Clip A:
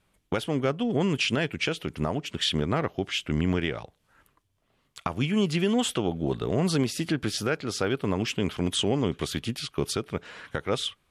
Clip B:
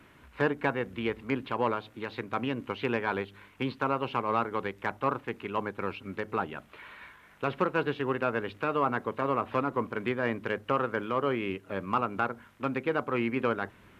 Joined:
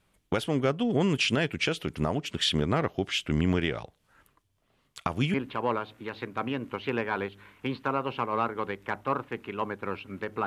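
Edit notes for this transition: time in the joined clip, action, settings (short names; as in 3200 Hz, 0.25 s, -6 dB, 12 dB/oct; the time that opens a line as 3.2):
clip A
5.34 switch to clip B from 1.3 s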